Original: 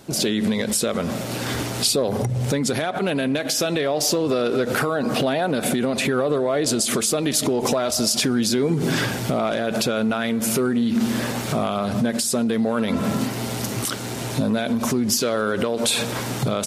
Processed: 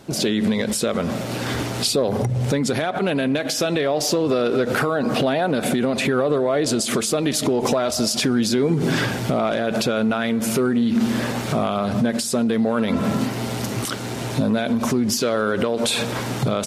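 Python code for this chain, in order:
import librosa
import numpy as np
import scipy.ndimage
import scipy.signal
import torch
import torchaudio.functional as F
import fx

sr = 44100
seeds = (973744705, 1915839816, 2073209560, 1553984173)

y = fx.high_shelf(x, sr, hz=6100.0, db=-7.0)
y = y * librosa.db_to_amplitude(1.5)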